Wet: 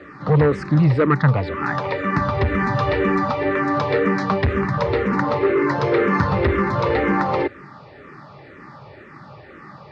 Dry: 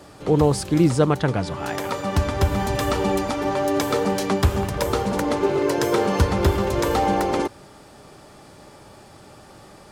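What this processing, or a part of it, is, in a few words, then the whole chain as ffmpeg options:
barber-pole phaser into a guitar amplifier: -filter_complex "[0:a]asplit=2[link_01][link_02];[link_02]afreqshift=-2[link_03];[link_01][link_03]amix=inputs=2:normalize=1,asoftclip=type=tanh:threshold=-17.5dB,highpass=81,equalizer=frequency=140:width_type=q:width=4:gain=6,equalizer=frequency=720:width_type=q:width=4:gain=-5,equalizer=frequency=1200:width_type=q:width=4:gain=6,equalizer=frequency=1900:width_type=q:width=4:gain=9,equalizer=frequency=3200:width_type=q:width=4:gain=-9,lowpass=frequency=3800:width=0.5412,lowpass=frequency=3800:width=1.3066,volume=6.5dB"

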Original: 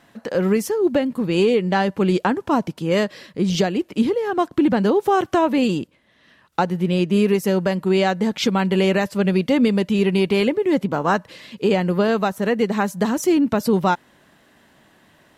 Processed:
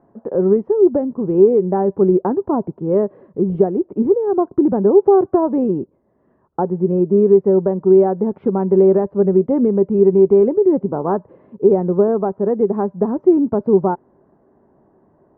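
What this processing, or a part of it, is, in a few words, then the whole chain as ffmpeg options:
under water: -af "lowpass=frequency=970:width=0.5412,lowpass=frequency=970:width=1.3066,equalizer=frequency=390:width_type=o:width=0.3:gain=10"

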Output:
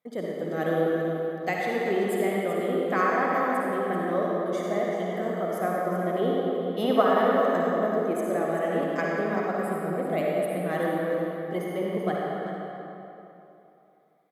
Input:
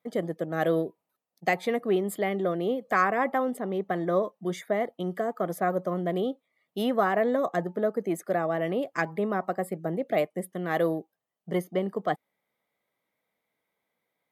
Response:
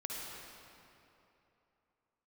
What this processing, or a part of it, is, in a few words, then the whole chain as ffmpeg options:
cave: -filter_complex "[0:a]asettb=1/sr,asplit=3[link_01][link_02][link_03];[link_01]atrim=end=6.194[link_04];[link_02]atrim=start=6.19:end=7.02,asetpts=PTS-STARTPTS,afade=type=in:duration=0.004:curve=qsin,afade=type=out:start_time=0.826:duration=0.004:curve=qsin,equalizer=frequency=980:width_type=o:width=2.7:gain=9[link_05];[link_03]atrim=start=7.016[link_06];[link_04][link_05]acrossfade=duration=0.004:curve1=hsin:curve2=qsin[link_07];[link_07][link_06]acrossfade=duration=0.004:curve1=qsin:curve2=hsin,aecho=1:1:385:0.316[link_08];[1:a]atrim=start_sample=2205[link_09];[link_08][link_09]afir=irnorm=-1:irlink=0"

